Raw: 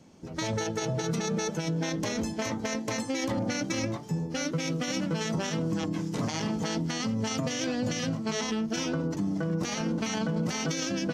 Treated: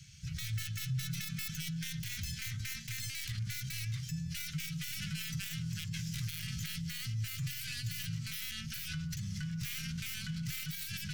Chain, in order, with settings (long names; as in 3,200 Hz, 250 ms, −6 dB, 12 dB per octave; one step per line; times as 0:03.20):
stylus tracing distortion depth 0.21 ms
Chebyshev band-stop filter 140–1,700 Hz, order 4
parametric band 1,800 Hz −9 dB 0.31 octaves
in parallel at −2 dB: compressor whose output falls as the input rises −47 dBFS, ratio −1
on the sum: brickwall limiter −28.5 dBFS, peak gain reduction 9.5 dB